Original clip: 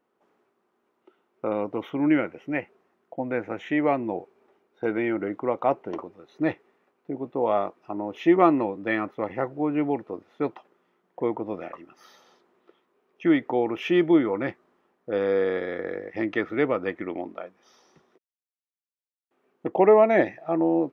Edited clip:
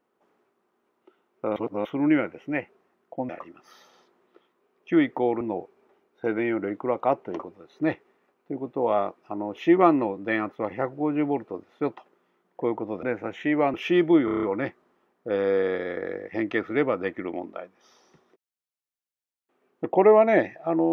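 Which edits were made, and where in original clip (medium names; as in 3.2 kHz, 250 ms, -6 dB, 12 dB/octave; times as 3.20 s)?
1.56–1.85 s: reverse
3.29–4.00 s: swap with 11.62–13.74 s
14.25 s: stutter 0.03 s, 7 plays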